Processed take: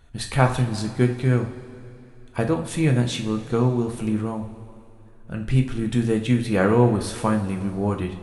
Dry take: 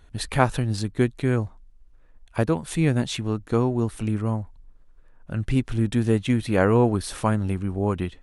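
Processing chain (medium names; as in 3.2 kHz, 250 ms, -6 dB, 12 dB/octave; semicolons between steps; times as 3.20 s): two-slope reverb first 0.41 s, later 3 s, from -16 dB, DRR 2.5 dB; trim -1 dB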